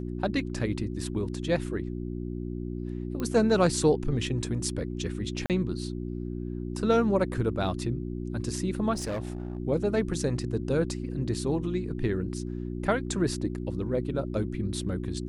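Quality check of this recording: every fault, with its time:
hum 60 Hz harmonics 6 -34 dBFS
3.2 pop -20 dBFS
5.46–5.5 gap 38 ms
8.93–9.58 clipped -28.5 dBFS

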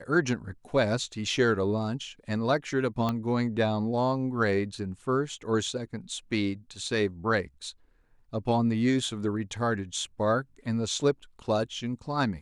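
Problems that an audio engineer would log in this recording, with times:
3.09 pop -16 dBFS

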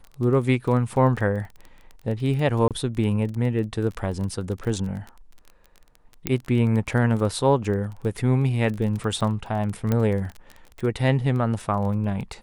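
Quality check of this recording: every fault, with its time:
crackle 20/s -30 dBFS
2.68–2.71 gap 27 ms
6.27 pop -7 dBFS
9.92 pop -11 dBFS

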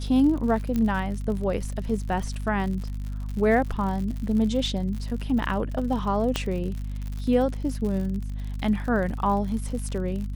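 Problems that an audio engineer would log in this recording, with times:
crackle 70/s -32 dBFS
hum 50 Hz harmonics 5 -31 dBFS
0.76 pop -15 dBFS
6.36 pop -10 dBFS

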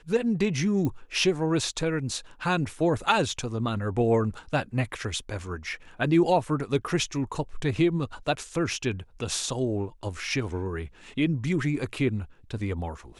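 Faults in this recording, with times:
0.85 pop -18 dBFS

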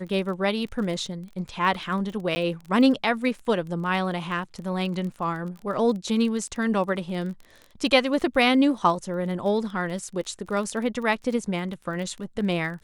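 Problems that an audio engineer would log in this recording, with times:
crackle 21/s -33 dBFS
2.35–2.36 gap 10 ms

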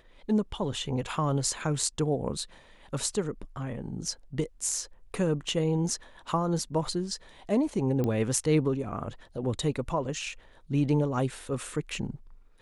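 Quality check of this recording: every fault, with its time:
8.04 pop -18 dBFS

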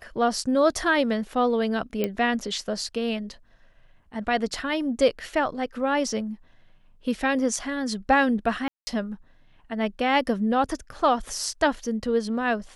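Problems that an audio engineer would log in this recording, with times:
2.04 pop -12 dBFS
8.68–8.87 gap 0.19 s

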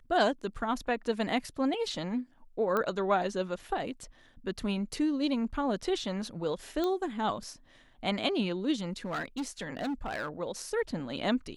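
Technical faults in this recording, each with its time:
2.77 pop -17 dBFS
6.84 pop -19 dBFS
9.05–10.29 clipped -30 dBFS

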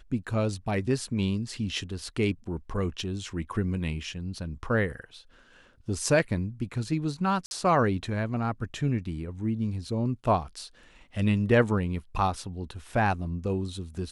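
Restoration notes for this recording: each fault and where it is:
7.46–7.51 gap 51 ms

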